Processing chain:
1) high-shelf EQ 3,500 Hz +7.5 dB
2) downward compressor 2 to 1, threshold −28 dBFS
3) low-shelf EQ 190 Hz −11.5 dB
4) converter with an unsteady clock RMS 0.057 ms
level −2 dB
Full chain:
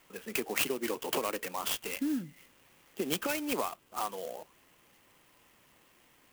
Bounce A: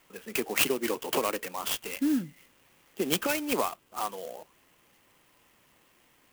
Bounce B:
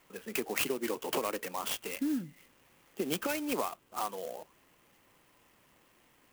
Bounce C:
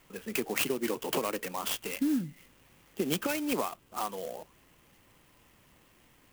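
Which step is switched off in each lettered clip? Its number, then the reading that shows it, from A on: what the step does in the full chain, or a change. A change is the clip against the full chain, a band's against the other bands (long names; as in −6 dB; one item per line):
2, change in integrated loudness +4.0 LU
1, 4 kHz band −2.0 dB
3, 125 Hz band +5.5 dB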